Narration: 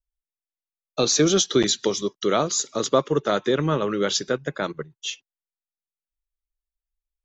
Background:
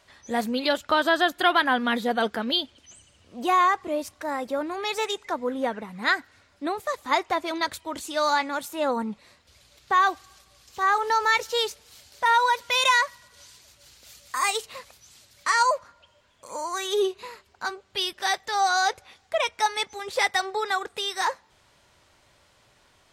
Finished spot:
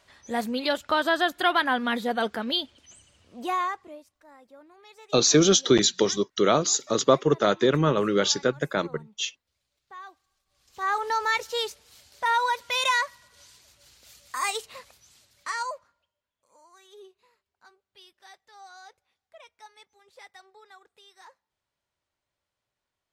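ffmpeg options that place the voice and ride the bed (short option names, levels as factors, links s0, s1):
-filter_complex "[0:a]adelay=4150,volume=1.06[s0];[1:a]volume=7.5,afade=t=out:st=3.16:d=0.89:silence=0.0891251,afade=t=in:st=10.45:d=0.51:silence=0.105925,afade=t=out:st=14.88:d=1.24:silence=0.0794328[s1];[s0][s1]amix=inputs=2:normalize=0"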